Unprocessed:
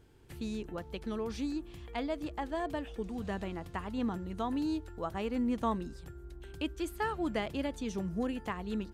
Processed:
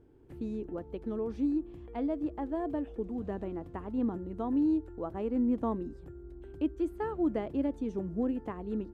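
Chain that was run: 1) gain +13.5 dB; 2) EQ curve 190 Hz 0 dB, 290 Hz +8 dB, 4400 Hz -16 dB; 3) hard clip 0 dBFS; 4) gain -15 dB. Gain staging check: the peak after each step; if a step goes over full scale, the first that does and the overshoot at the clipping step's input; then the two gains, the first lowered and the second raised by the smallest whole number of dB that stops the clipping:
-7.0, -5.0, -5.0, -20.0 dBFS; no overload

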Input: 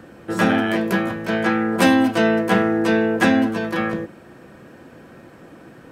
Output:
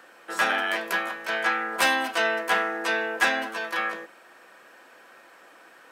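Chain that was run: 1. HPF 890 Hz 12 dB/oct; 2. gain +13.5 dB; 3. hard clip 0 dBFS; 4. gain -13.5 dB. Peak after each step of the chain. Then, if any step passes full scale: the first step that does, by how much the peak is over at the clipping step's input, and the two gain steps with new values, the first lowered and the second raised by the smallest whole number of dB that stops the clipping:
-7.0, +6.5, 0.0, -13.5 dBFS; step 2, 6.5 dB; step 2 +6.5 dB, step 4 -6.5 dB

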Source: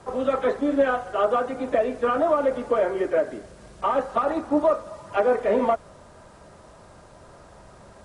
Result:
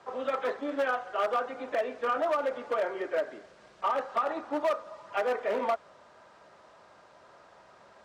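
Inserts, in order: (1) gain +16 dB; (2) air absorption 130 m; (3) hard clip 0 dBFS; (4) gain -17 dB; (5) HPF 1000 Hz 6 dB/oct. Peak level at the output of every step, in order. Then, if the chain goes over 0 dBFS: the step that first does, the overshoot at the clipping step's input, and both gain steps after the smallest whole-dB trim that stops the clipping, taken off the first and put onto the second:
+7.5, +7.0, 0.0, -17.0, -16.0 dBFS; step 1, 7.0 dB; step 1 +9 dB, step 4 -10 dB

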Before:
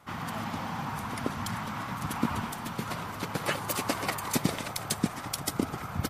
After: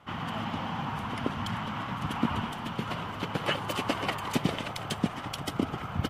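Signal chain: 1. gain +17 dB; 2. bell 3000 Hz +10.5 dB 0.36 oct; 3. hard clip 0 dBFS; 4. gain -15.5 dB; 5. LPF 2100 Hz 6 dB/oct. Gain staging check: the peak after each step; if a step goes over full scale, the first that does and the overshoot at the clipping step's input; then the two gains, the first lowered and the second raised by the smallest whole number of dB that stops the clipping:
+5.5, +6.0, 0.0, -15.5, -15.5 dBFS; step 1, 6.0 dB; step 1 +11 dB, step 4 -9.5 dB

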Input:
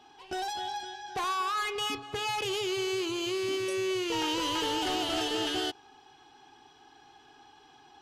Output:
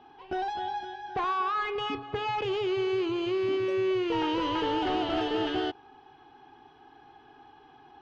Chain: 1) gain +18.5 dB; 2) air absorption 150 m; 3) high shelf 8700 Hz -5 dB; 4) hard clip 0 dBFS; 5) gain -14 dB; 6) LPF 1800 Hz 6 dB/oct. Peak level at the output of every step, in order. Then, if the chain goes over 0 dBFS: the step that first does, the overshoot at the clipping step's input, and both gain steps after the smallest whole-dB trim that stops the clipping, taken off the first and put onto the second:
-4.5, -5.0, -5.0, -5.0, -19.0, -20.0 dBFS; no overload

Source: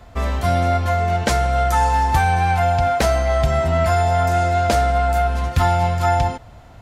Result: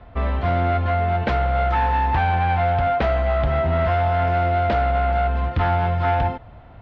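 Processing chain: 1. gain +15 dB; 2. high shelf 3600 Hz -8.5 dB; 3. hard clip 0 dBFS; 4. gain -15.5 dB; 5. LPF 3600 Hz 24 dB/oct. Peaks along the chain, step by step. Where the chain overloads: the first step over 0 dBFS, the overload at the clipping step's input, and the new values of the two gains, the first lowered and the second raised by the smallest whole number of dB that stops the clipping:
+9.5, +9.0, 0.0, -15.5, -14.0 dBFS; step 1, 9.0 dB; step 1 +6 dB, step 4 -6.5 dB

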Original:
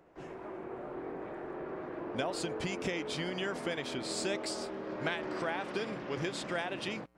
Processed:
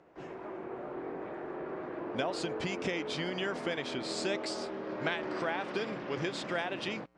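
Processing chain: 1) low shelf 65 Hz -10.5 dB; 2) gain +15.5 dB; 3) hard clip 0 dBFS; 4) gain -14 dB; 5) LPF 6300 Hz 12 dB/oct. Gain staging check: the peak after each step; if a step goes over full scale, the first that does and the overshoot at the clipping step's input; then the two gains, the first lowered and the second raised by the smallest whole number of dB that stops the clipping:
-18.5, -3.0, -3.0, -17.0, -17.0 dBFS; no overload

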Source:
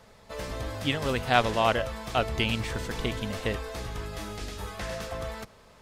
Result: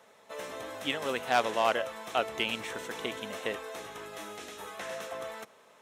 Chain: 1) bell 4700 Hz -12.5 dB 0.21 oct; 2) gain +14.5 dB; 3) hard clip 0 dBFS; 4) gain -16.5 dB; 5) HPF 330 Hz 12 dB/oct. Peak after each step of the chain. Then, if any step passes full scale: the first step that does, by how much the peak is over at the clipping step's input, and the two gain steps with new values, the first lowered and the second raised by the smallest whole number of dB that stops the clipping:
-5.0, +9.5, 0.0, -16.5, -11.5 dBFS; step 2, 9.5 dB; step 2 +4.5 dB, step 4 -6.5 dB

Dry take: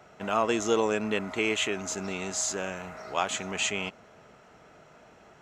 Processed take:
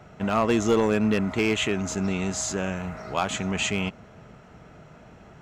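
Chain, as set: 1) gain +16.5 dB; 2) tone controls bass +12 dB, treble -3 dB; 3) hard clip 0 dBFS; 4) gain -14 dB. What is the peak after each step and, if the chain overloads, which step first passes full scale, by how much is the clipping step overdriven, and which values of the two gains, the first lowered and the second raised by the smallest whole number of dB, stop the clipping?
+5.0, +6.5, 0.0, -14.0 dBFS; step 1, 6.5 dB; step 1 +9.5 dB, step 4 -7 dB

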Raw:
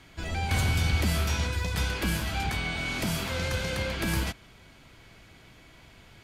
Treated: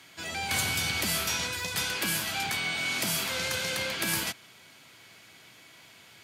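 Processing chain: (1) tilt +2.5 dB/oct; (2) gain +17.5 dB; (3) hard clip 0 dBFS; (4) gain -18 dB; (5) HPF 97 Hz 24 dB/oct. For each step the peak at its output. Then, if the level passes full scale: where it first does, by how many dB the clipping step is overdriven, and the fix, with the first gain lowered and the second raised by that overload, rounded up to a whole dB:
-14.5, +3.0, 0.0, -18.0, -15.5 dBFS; step 2, 3.0 dB; step 2 +14.5 dB, step 4 -15 dB

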